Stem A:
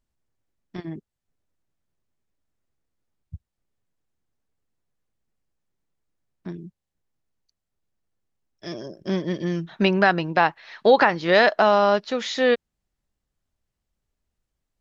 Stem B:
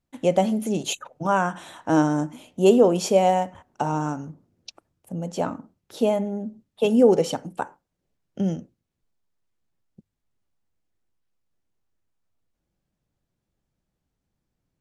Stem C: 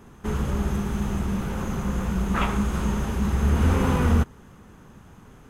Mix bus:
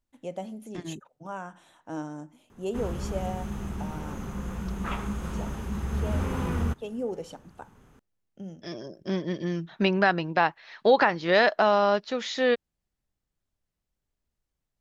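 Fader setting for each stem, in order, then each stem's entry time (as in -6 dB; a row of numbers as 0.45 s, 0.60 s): -4.0 dB, -16.0 dB, -8.0 dB; 0.00 s, 0.00 s, 2.50 s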